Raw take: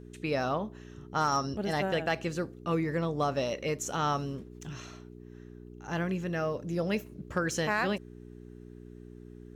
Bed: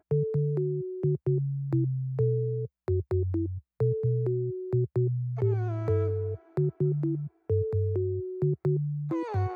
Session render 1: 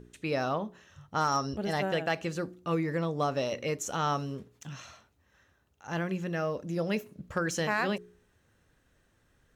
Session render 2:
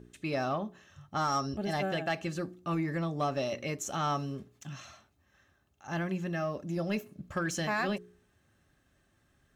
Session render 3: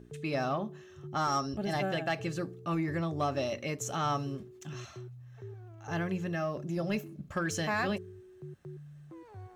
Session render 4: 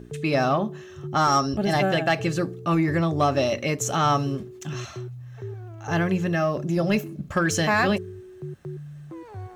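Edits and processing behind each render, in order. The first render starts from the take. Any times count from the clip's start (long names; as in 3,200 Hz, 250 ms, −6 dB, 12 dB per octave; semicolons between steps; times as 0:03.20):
hum removal 60 Hz, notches 7
notch comb filter 480 Hz; soft clipping −20.5 dBFS, distortion −23 dB
mix in bed −19 dB
level +10 dB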